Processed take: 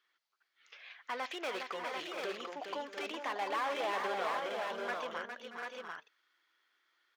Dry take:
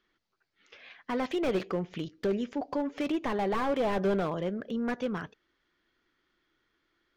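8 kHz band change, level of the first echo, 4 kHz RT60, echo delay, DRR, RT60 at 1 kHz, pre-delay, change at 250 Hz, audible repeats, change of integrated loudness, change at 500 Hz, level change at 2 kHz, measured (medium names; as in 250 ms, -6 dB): no reading, -6.5 dB, no reverb, 410 ms, no reverb, no reverb, no reverb, -18.0 dB, 4, -7.0 dB, -8.5 dB, +1.5 dB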